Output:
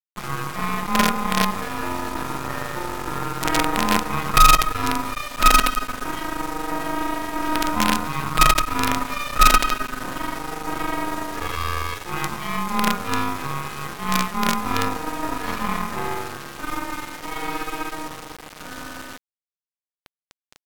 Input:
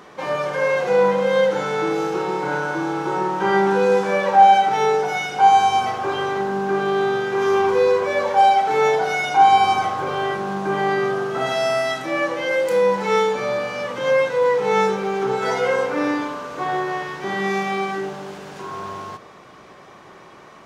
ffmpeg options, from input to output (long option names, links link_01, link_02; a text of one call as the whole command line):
ffmpeg -i in.wav -af "aeval=exprs='val(0)*sin(2*PI*760*n/s)':channel_layout=same,acrusher=bits=3:dc=4:mix=0:aa=0.000001,asetrate=36028,aresample=44100,atempo=1.22405,volume=1.5dB" out.wav